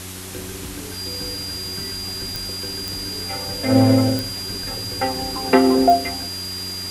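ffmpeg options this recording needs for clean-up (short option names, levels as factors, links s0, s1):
-af "adeclick=t=4,bandreject=f=93:t=h:w=4,bandreject=f=186:t=h:w=4,bandreject=f=279:t=h:w=4,bandreject=f=372:t=h:w=4,bandreject=f=4800:w=30,afwtdn=0.02"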